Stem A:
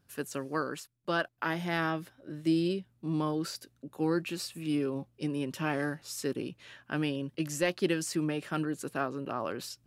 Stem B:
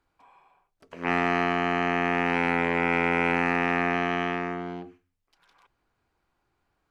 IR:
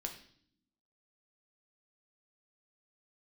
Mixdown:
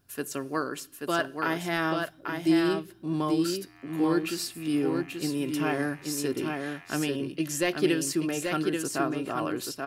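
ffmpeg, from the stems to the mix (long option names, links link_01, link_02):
-filter_complex "[0:a]highshelf=frequency=8600:gain=7,volume=0.5dB,asplit=4[link_01][link_02][link_03][link_04];[link_02]volume=-10dB[link_05];[link_03]volume=-3dB[link_06];[1:a]highpass=1200,alimiter=limit=-21.5dB:level=0:latency=1,aeval=exprs='val(0)*pow(10,-26*(0.5-0.5*cos(2*PI*0.57*n/s))/20)':channel_layout=same,adelay=2350,volume=-9dB,asplit=3[link_07][link_08][link_09];[link_08]volume=-9dB[link_10];[link_09]volume=-5.5dB[link_11];[link_04]apad=whole_len=408297[link_12];[link_07][link_12]sidechaincompress=threshold=-39dB:ratio=8:attack=16:release=1030[link_13];[2:a]atrim=start_sample=2205[link_14];[link_05][link_10]amix=inputs=2:normalize=0[link_15];[link_15][link_14]afir=irnorm=-1:irlink=0[link_16];[link_06][link_11]amix=inputs=2:normalize=0,aecho=0:1:833:1[link_17];[link_01][link_13][link_16][link_17]amix=inputs=4:normalize=0,aecho=1:1:2.9:0.31"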